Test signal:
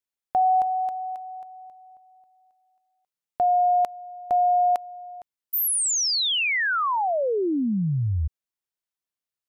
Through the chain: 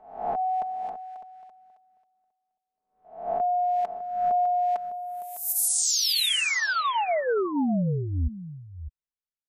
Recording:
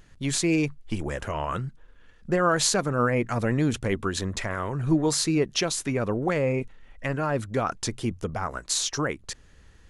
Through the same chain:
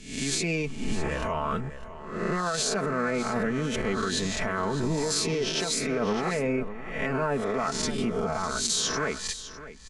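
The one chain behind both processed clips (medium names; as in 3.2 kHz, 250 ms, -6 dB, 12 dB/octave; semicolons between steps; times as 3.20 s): reverse spectral sustain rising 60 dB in 0.81 s; Bessel low-pass 7.6 kHz, order 2; comb 4.6 ms, depth 65%; peak limiter -17.5 dBFS; compression, threshold -23 dBFS; delay 605 ms -10.5 dB; three bands expanded up and down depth 40%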